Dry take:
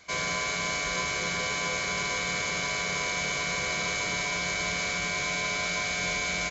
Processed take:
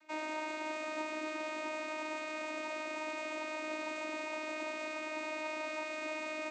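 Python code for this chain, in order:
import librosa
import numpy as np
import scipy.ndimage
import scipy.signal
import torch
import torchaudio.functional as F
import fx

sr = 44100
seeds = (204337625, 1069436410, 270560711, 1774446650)

y = fx.high_shelf(x, sr, hz=3500.0, db=-8.5)
y = fx.vocoder(y, sr, bands=16, carrier='saw', carrier_hz=310.0)
y = y + 10.0 ** (-10.5 / 20.0) * np.pad(y, (int(621 * sr / 1000.0), 0))[:len(y)]
y = y * 10.0 ** (-6.0 / 20.0)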